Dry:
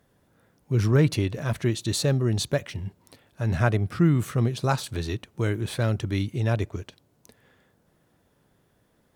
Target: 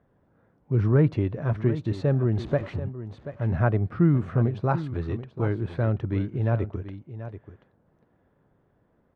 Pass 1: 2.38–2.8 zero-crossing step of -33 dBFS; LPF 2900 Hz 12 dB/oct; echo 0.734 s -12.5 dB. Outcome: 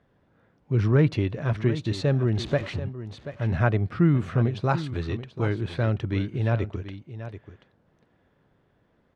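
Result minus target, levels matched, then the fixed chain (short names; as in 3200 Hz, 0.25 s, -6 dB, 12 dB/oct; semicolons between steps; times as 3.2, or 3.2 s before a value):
4000 Hz band +11.0 dB
2.38–2.8 zero-crossing step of -33 dBFS; LPF 1400 Hz 12 dB/oct; echo 0.734 s -12.5 dB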